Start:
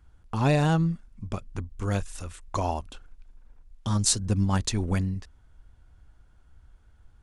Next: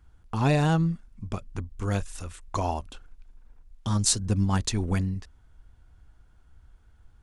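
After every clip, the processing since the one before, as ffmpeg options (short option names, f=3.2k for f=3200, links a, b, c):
-af "bandreject=f=570:w=18"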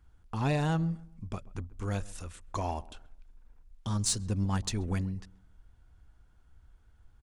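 -filter_complex "[0:a]asplit=2[a][b];[b]asoftclip=type=tanh:threshold=-26dB,volume=-5dB[c];[a][c]amix=inputs=2:normalize=0,asplit=2[d][e];[e]adelay=133,lowpass=f=1.3k:p=1,volume=-20dB,asplit=2[f][g];[g]adelay=133,lowpass=f=1.3k:p=1,volume=0.36,asplit=2[h][i];[i]adelay=133,lowpass=f=1.3k:p=1,volume=0.36[j];[d][f][h][j]amix=inputs=4:normalize=0,volume=-8dB"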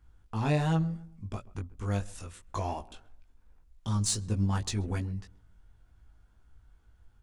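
-af "flanger=delay=18:depth=2:speed=2.8,volume=3dB"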